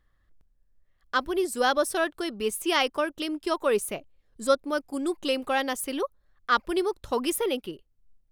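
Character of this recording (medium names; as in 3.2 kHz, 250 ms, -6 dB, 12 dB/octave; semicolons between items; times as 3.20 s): noise floor -69 dBFS; spectral tilt -2.0 dB/octave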